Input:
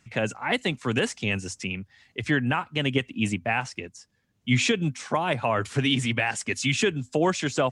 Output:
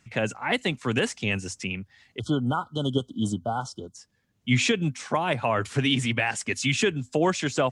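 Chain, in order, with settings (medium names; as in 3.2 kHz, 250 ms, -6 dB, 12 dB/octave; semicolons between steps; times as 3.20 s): spectral selection erased 2.19–3.95 s, 1.5–3 kHz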